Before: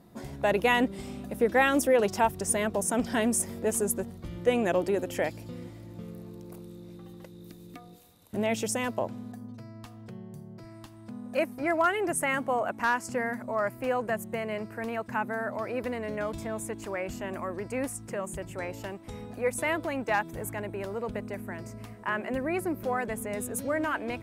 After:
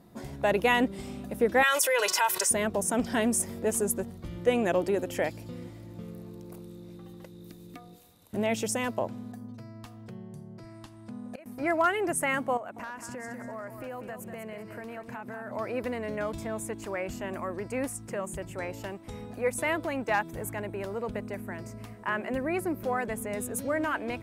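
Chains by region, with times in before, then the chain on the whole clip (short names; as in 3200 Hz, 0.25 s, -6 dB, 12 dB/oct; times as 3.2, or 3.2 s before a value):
1.63–2.51 HPF 1200 Hz + comb 2 ms, depth 71% + fast leveller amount 70%
10.15–11.46 LPF 12000 Hz 24 dB/oct + flipped gate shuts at -26 dBFS, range -24 dB
12.57–15.51 compressor 5:1, threshold -37 dBFS + feedback echo 0.194 s, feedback 29%, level -8 dB
whole clip: dry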